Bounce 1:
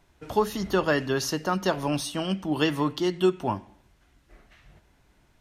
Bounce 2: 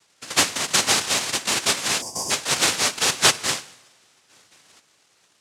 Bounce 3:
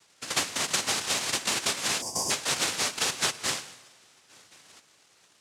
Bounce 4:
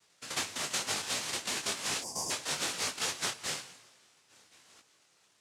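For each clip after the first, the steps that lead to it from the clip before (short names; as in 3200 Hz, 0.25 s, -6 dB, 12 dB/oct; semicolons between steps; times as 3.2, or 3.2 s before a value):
noise vocoder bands 1; two-slope reverb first 0.81 s, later 3.1 s, from -18 dB, DRR 16.5 dB; spectral gain 2.02–2.31, 1100–4600 Hz -23 dB; gain +3.5 dB
compressor 10:1, threshold -24 dBFS, peak gain reduction 13.5 dB
detuned doubles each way 36 cents; gain -2.5 dB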